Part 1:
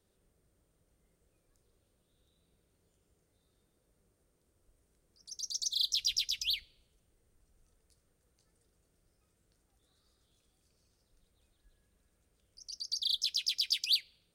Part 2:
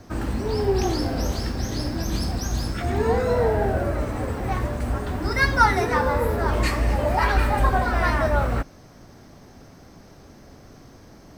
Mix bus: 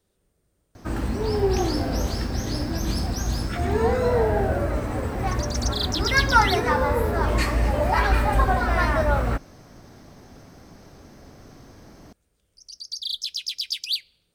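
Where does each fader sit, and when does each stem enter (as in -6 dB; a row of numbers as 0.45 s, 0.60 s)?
+3.0 dB, 0.0 dB; 0.00 s, 0.75 s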